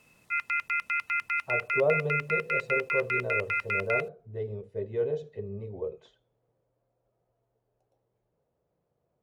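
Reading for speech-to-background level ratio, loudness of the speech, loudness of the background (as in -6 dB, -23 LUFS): -4.0 dB, -33.0 LUFS, -29.0 LUFS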